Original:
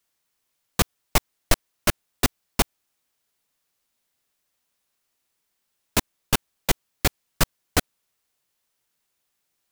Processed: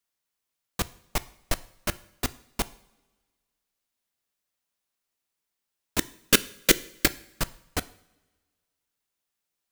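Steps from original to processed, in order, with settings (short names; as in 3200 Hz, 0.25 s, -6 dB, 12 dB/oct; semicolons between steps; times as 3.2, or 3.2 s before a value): 5.99–7.06 EQ curve 100 Hz 0 dB, 310 Hz +14 dB, 540 Hz +13 dB, 780 Hz -7 dB, 1500 Hz +13 dB; two-slope reverb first 0.59 s, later 1.7 s, from -17 dB, DRR 15 dB; gain -8 dB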